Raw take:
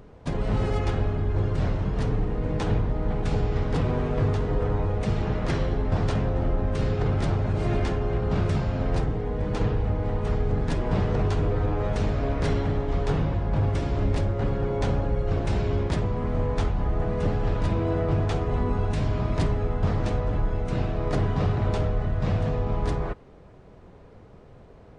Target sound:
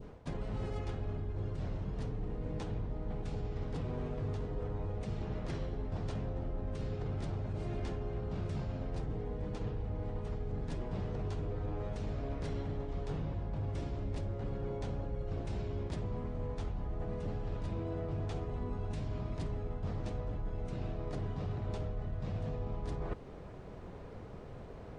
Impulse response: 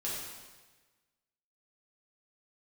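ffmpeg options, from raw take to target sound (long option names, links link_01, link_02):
-af "adynamicequalizer=threshold=0.00562:dfrequency=1500:dqfactor=0.75:tfrequency=1500:tqfactor=0.75:attack=5:release=100:ratio=0.375:range=2:mode=cutabove:tftype=bell,areverse,acompressor=threshold=-37dB:ratio=6,areverse,volume=1.5dB"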